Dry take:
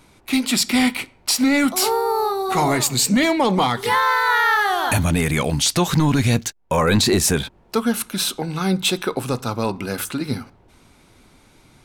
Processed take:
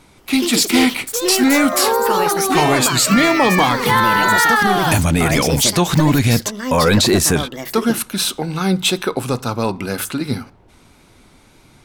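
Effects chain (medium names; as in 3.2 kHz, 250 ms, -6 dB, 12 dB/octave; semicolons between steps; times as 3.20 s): ever faster or slower copies 176 ms, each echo +5 st, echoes 2, each echo -6 dB; wow and flutter 25 cents; trim +3 dB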